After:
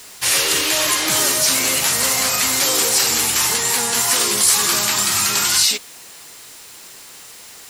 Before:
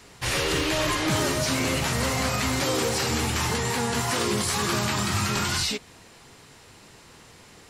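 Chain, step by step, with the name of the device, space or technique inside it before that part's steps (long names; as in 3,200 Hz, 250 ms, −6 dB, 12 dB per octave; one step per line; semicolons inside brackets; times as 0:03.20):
turntable without a phono preamp (RIAA equalisation recording; white noise bed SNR 26 dB)
level +3.5 dB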